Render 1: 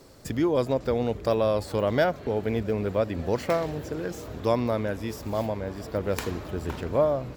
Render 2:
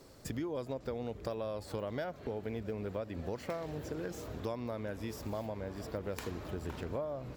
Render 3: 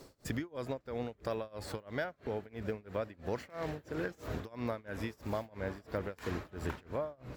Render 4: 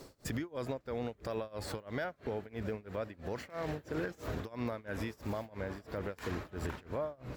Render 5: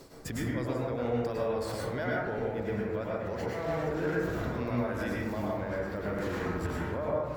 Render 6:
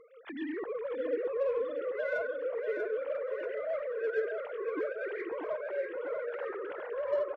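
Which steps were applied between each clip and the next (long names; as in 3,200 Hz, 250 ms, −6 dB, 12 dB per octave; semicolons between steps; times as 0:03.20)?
downward compressor, threshold −30 dBFS, peak gain reduction 12 dB; level −5 dB
dynamic equaliser 1,700 Hz, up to +7 dB, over −57 dBFS, Q 1.1; amplitude tremolo 3 Hz, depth 96%; speech leveller 0.5 s; level +3 dB
brickwall limiter −29.5 dBFS, peak gain reduction 8 dB; level +2.5 dB
dense smooth reverb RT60 1.2 s, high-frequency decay 0.3×, pre-delay 90 ms, DRR −5.5 dB
three sine waves on the formant tracks; in parallel at −5 dB: soft clipping −32 dBFS, distortion −9 dB; on the sum: repeating echo 639 ms, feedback 45%, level −6.5 dB; level −5.5 dB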